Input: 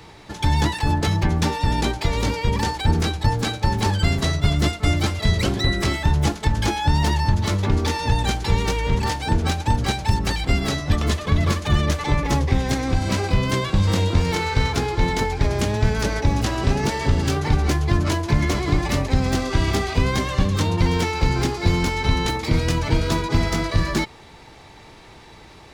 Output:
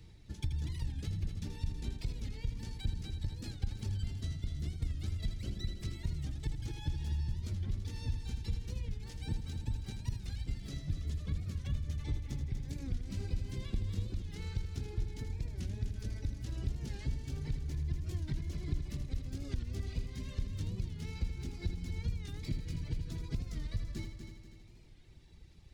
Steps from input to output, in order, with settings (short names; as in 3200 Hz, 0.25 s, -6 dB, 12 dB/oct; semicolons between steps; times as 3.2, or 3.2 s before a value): passive tone stack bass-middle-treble 10-0-1; compressor 6:1, threshold -36 dBFS, peak gain reduction 15.5 dB; reverb removal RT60 1.9 s; multi-head echo 81 ms, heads first and third, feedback 61%, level -8.5 dB; record warp 45 rpm, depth 160 cents; gain +4 dB